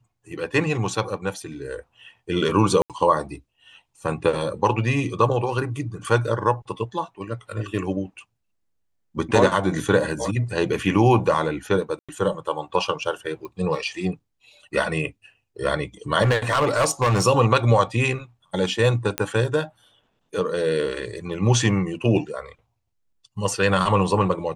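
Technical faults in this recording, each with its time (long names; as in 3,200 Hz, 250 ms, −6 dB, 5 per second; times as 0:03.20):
0:02.82–0:02.90: drop-out 77 ms
0:11.99–0:12.09: drop-out 96 ms
0:13.45: click −24 dBFS
0:16.22–0:17.24: clipping −15.5 dBFS
0:19.18: click −7 dBFS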